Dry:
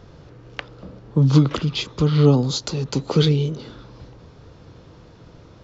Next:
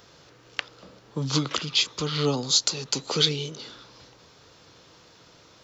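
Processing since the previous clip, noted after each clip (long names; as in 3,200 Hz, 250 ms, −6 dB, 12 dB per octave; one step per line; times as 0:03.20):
spectral tilt +4 dB per octave
level −3 dB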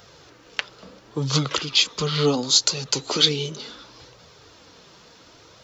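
flanger 0.71 Hz, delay 1.3 ms, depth 4 ms, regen −32%
level +7.5 dB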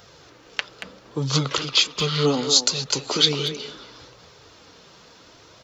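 far-end echo of a speakerphone 230 ms, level −7 dB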